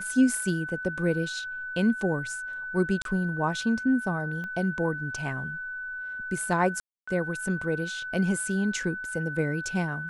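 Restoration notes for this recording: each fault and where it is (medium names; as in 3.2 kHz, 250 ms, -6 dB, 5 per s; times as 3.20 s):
whine 1.5 kHz -33 dBFS
3.02–3.05 s: dropout 32 ms
4.44 s: pop -26 dBFS
6.80–7.08 s: dropout 275 ms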